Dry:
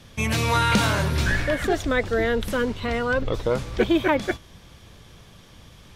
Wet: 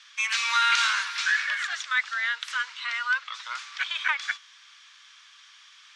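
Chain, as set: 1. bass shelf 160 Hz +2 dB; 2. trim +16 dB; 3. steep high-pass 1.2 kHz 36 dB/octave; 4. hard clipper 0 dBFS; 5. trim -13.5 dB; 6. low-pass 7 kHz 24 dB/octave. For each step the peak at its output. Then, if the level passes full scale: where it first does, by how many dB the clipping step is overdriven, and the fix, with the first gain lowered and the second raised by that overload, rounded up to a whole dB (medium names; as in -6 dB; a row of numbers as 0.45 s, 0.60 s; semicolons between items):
-8.5 dBFS, +7.5 dBFS, +7.0 dBFS, 0.0 dBFS, -13.5 dBFS, -11.5 dBFS; step 2, 7.0 dB; step 2 +9 dB, step 5 -6.5 dB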